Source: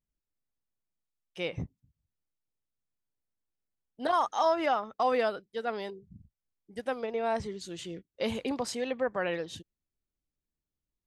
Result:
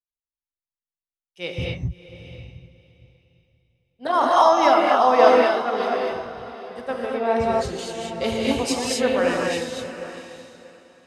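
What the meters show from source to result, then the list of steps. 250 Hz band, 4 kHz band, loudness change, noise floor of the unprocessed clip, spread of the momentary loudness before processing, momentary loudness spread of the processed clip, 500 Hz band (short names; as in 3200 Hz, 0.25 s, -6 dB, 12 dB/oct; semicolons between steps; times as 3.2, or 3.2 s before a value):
+11.0 dB, +11.5 dB, +11.0 dB, under -85 dBFS, 15 LU, 19 LU, +11.5 dB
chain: on a send: diffused feedback echo 0.682 s, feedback 42%, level -7 dB; on the sum: non-linear reverb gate 0.28 s rising, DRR -2.5 dB; three-band expander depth 70%; gain +5.5 dB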